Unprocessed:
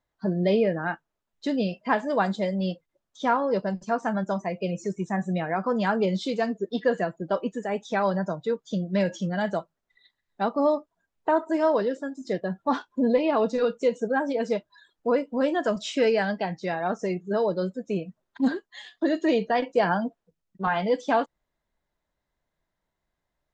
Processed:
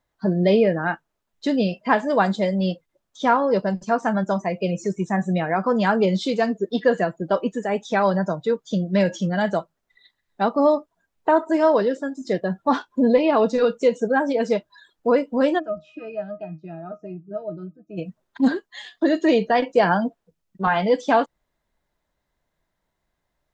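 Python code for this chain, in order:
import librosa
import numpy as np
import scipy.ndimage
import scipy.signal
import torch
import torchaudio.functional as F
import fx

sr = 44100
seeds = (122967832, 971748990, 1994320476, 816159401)

y = fx.octave_resonator(x, sr, note='D#', decay_s=0.14, at=(15.58, 17.97), fade=0.02)
y = y * 10.0 ** (5.0 / 20.0)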